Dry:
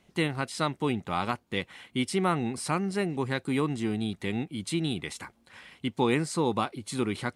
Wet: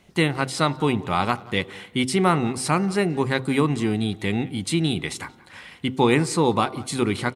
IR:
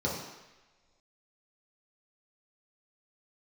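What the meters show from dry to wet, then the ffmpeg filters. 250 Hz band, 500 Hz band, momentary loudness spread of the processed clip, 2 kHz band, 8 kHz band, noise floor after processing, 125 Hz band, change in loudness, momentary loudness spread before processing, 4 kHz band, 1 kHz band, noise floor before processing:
+6.5 dB, +7.0 dB, 9 LU, +7.5 dB, +7.5 dB, −50 dBFS, +7.5 dB, +7.0 dB, 8 LU, +7.0 dB, +7.5 dB, −66 dBFS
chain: -filter_complex "[0:a]bandreject=frequency=130.1:width_type=h:width=4,bandreject=frequency=260.2:width_type=h:width=4,bandreject=frequency=390.3:width_type=h:width=4,bandreject=frequency=520.4:width_type=h:width=4,bandreject=frequency=650.5:width_type=h:width=4,bandreject=frequency=780.6:width_type=h:width=4,bandreject=frequency=910.7:width_type=h:width=4,bandreject=frequency=1040.8:width_type=h:width=4,bandreject=frequency=1170.9:width_type=h:width=4,bandreject=frequency=1301:width_type=h:width=4,bandreject=frequency=1431.1:width_type=h:width=4,asplit=2[link_01][link_02];[link_02]adelay=180,highpass=300,lowpass=3400,asoftclip=type=hard:threshold=-22dB,volume=-19dB[link_03];[link_01][link_03]amix=inputs=2:normalize=0,asplit=2[link_04][link_05];[1:a]atrim=start_sample=2205,asetrate=30870,aresample=44100[link_06];[link_05][link_06]afir=irnorm=-1:irlink=0,volume=-31dB[link_07];[link_04][link_07]amix=inputs=2:normalize=0,volume=7.5dB"

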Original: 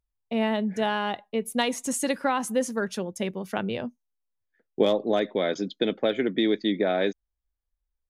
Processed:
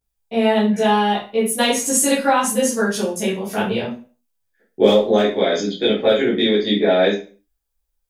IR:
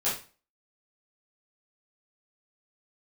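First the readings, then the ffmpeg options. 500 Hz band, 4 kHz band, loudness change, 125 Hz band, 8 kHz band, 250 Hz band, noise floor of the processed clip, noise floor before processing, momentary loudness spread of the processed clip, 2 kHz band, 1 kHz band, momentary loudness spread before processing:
+9.0 dB, +10.0 dB, +9.0 dB, +8.5 dB, +13.5 dB, +7.5 dB, −73 dBFS, −83 dBFS, 7 LU, +8.0 dB, +9.5 dB, 7 LU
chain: -filter_complex "[0:a]highshelf=frequency=5200:gain=9[link_01];[1:a]atrim=start_sample=2205,afade=type=out:start_time=0.42:duration=0.01,atrim=end_sample=18963[link_02];[link_01][link_02]afir=irnorm=-1:irlink=0,volume=-1dB"

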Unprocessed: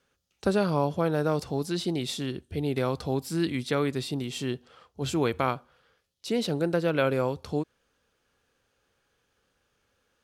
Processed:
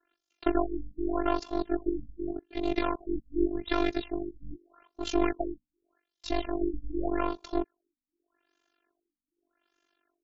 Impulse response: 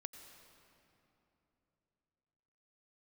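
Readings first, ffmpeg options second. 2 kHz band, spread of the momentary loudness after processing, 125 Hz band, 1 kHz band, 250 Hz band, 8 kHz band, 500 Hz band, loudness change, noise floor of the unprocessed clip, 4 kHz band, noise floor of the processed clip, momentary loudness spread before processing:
−5.0 dB, 10 LU, −14.5 dB, −1.5 dB, −1.5 dB, −10.5 dB, −4.5 dB, −3.5 dB, −75 dBFS, −7.0 dB, below −85 dBFS, 8 LU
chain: -af "highpass=frequency=170:width=0.5412,highpass=frequency=170:width=1.3066,aeval=exprs='0.299*(cos(1*acos(clip(val(0)/0.299,-1,1)))-cos(1*PI/2))+0.0335*(cos(8*acos(clip(val(0)/0.299,-1,1)))-cos(8*PI/2))':channel_layout=same,afftfilt=real='hypot(re,im)*cos(PI*b)':imag='0':win_size=512:overlap=0.75,tremolo=f=48:d=0.857,afftfilt=real='re*lt(b*sr/1024,270*pow(7700/270,0.5+0.5*sin(2*PI*0.84*pts/sr)))':imag='im*lt(b*sr/1024,270*pow(7700/270,0.5+0.5*sin(2*PI*0.84*pts/sr)))':win_size=1024:overlap=0.75,volume=5.5dB"

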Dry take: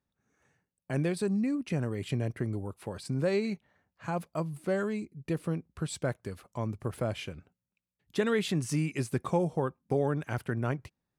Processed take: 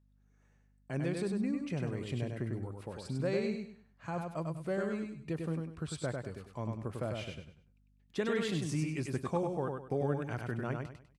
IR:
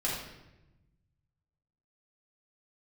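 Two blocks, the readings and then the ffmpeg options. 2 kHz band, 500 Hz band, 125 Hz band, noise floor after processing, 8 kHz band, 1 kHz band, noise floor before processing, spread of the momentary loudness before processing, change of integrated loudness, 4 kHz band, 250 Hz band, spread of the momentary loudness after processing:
−4.0 dB, −4.0 dB, −4.0 dB, −68 dBFS, −5.5 dB, −4.0 dB, below −85 dBFS, 9 LU, −4.0 dB, −4.0 dB, −4.0 dB, 8 LU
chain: -filter_complex "[0:a]asplit=2[link_01][link_02];[link_02]aecho=0:1:99|198|297|396:0.631|0.189|0.0568|0.017[link_03];[link_01][link_03]amix=inputs=2:normalize=0,aeval=exprs='val(0)+0.000891*(sin(2*PI*50*n/s)+sin(2*PI*2*50*n/s)/2+sin(2*PI*3*50*n/s)/3+sin(2*PI*4*50*n/s)/4+sin(2*PI*5*50*n/s)/5)':channel_layout=same,lowpass=9000,volume=-5.5dB"

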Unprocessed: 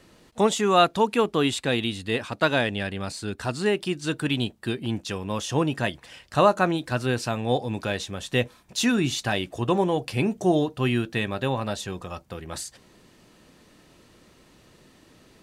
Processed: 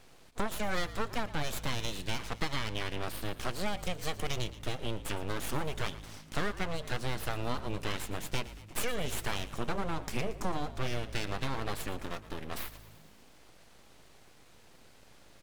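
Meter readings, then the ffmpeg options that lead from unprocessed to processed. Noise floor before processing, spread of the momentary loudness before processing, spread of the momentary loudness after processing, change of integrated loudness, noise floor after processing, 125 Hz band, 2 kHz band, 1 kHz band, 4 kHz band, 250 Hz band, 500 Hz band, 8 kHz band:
−56 dBFS, 11 LU, 5 LU, −11.5 dB, −57 dBFS, −9.5 dB, −9.0 dB, −11.5 dB, −8.5 dB, −14.0 dB, −14.0 dB, −7.0 dB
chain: -filter_complex "[0:a]acompressor=threshold=-26dB:ratio=6,aeval=exprs='abs(val(0))':channel_layout=same,asplit=7[link_01][link_02][link_03][link_04][link_05][link_06][link_07];[link_02]adelay=115,afreqshift=-53,volume=-16dB[link_08];[link_03]adelay=230,afreqshift=-106,volume=-20.4dB[link_09];[link_04]adelay=345,afreqshift=-159,volume=-24.9dB[link_10];[link_05]adelay=460,afreqshift=-212,volume=-29.3dB[link_11];[link_06]adelay=575,afreqshift=-265,volume=-33.7dB[link_12];[link_07]adelay=690,afreqshift=-318,volume=-38.2dB[link_13];[link_01][link_08][link_09][link_10][link_11][link_12][link_13]amix=inputs=7:normalize=0,volume=-1.5dB"

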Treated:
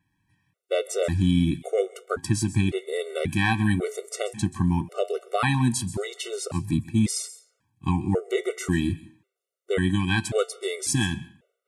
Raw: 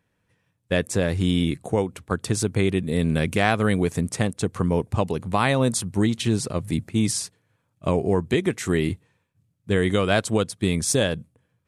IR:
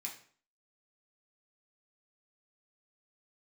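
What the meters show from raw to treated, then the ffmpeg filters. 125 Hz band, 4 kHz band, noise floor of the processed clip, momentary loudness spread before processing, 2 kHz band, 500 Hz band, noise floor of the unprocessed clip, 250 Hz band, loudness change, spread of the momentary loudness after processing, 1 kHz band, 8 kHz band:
−1.5 dB, −3.0 dB, −82 dBFS, 5 LU, −2.0 dB, −3.5 dB, −73 dBFS, −2.0 dB, −2.5 dB, 9 LU, −3.5 dB, −2.5 dB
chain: -filter_complex "[0:a]flanger=delay=6.8:depth=3.9:regen=-74:speed=0.3:shape=triangular,asplit=2[link_01][link_02];[1:a]atrim=start_sample=2205,highshelf=frequency=9400:gain=10.5,adelay=131[link_03];[link_02][link_03]afir=irnorm=-1:irlink=0,volume=-17dB[link_04];[link_01][link_04]amix=inputs=2:normalize=0,afftfilt=real='re*gt(sin(2*PI*0.92*pts/sr)*(1-2*mod(floor(b*sr/1024/380),2)),0)':imag='im*gt(sin(2*PI*0.92*pts/sr)*(1-2*mod(floor(b*sr/1024/380),2)),0)':win_size=1024:overlap=0.75,volume=5dB"

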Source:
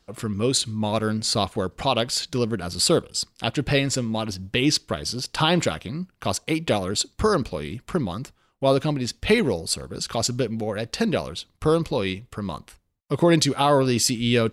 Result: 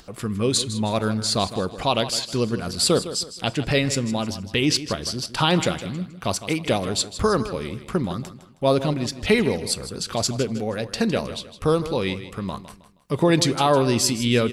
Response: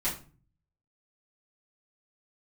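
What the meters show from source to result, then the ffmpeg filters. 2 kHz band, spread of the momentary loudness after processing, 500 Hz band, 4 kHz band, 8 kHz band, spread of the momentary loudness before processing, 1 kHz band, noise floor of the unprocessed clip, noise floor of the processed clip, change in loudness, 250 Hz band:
+0.5 dB, 10 LU, +0.5 dB, +0.5 dB, +0.5 dB, 11 LU, +0.5 dB, −65 dBFS, −46 dBFS, +0.5 dB, +0.5 dB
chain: -filter_complex "[0:a]acompressor=mode=upward:threshold=-39dB:ratio=2.5,aecho=1:1:158|316|474:0.224|0.0761|0.0259,asplit=2[link_01][link_02];[1:a]atrim=start_sample=2205[link_03];[link_02][link_03]afir=irnorm=-1:irlink=0,volume=-23.5dB[link_04];[link_01][link_04]amix=inputs=2:normalize=0"

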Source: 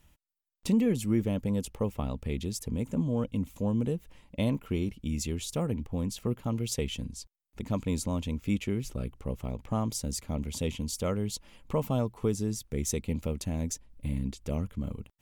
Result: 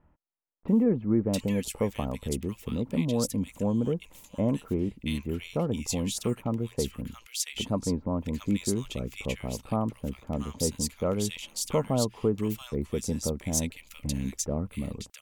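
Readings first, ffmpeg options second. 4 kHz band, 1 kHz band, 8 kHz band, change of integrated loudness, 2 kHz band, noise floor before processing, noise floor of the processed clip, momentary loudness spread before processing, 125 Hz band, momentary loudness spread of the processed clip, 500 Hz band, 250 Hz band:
+4.5 dB, +3.0 dB, +4.5 dB, +2.0 dB, +3.0 dB, below −85 dBFS, −60 dBFS, 8 LU, 0.0 dB, 8 LU, +3.5 dB, +2.0 dB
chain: -filter_complex "[0:a]lowshelf=frequency=140:gain=-8.5,acrossover=split=1500[link_01][link_02];[link_02]adelay=680[link_03];[link_01][link_03]amix=inputs=2:normalize=0,volume=4.5dB"

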